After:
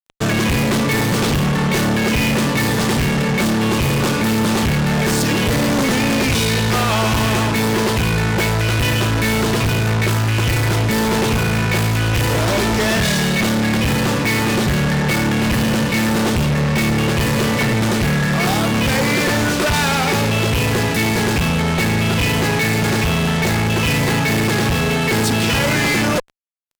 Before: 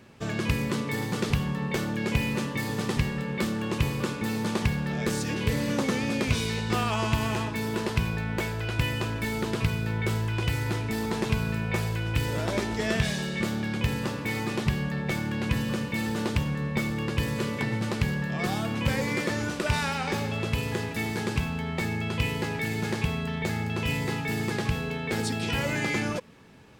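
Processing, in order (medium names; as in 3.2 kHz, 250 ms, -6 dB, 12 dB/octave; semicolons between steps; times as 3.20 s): fuzz box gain 37 dB, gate -43 dBFS; trim -1.5 dB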